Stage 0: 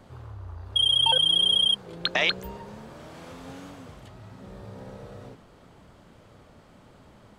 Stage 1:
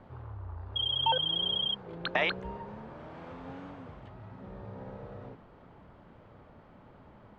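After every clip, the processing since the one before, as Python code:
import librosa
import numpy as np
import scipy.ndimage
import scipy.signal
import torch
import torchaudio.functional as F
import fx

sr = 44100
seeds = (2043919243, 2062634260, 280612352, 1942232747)

y = scipy.signal.sosfilt(scipy.signal.butter(2, 2200.0, 'lowpass', fs=sr, output='sos'), x)
y = fx.peak_eq(y, sr, hz=890.0, db=3.0, octaves=0.39)
y = y * librosa.db_to_amplitude(-2.0)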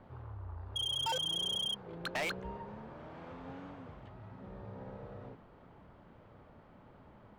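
y = np.clip(x, -10.0 ** (-28.5 / 20.0), 10.0 ** (-28.5 / 20.0))
y = y * librosa.db_to_amplitude(-3.0)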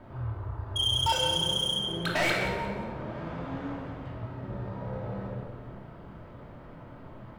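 y = fx.doubler(x, sr, ms=25.0, db=-10.5)
y = fx.echo_feedback(y, sr, ms=178, feedback_pct=33, wet_db=-12.5)
y = fx.room_shoebox(y, sr, seeds[0], volume_m3=1500.0, walls='mixed', distance_m=2.8)
y = y * librosa.db_to_amplitude(4.5)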